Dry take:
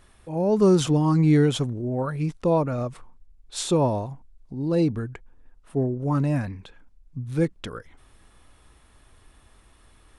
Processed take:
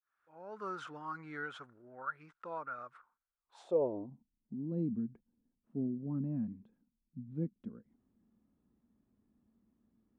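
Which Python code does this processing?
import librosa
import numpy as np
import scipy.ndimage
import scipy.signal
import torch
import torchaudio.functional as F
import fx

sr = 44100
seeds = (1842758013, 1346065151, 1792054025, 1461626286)

y = fx.fade_in_head(x, sr, length_s=0.58)
y = fx.filter_sweep_bandpass(y, sr, from_hz=1400.0, to_hz=220.0, start_s=3.37, end_s=4.14, q=6.5)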